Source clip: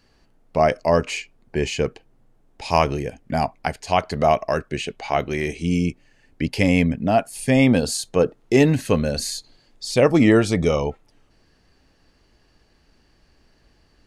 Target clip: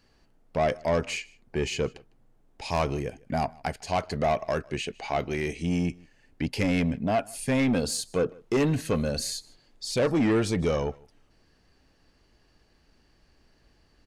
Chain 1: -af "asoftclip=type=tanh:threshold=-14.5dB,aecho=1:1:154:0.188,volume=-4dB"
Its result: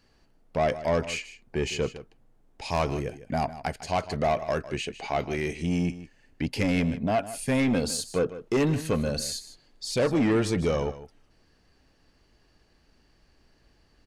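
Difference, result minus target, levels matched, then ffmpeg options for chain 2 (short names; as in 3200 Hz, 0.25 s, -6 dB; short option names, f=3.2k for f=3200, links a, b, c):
echo-to-direct +10.5 dB
-af "asoftclip=type=tanh:threshold=-14.5dB,aecho=1:1:154:0.0562,volume=-4dB"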